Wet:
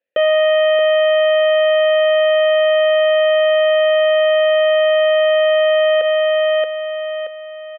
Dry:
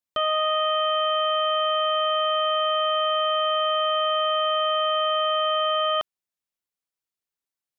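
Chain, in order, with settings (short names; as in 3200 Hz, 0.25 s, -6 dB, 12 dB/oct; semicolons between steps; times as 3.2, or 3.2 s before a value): vowel filter e; air absorption 370 m; feedback echo 0.627 s, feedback 40%, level -8 dB; maximiser +34 dB; gain -7.5 dB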